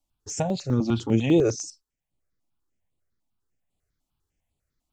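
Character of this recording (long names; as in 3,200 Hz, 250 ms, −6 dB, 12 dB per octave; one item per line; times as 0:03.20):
notches that jump at a steady rate 10 Hz 440–5,700 Hz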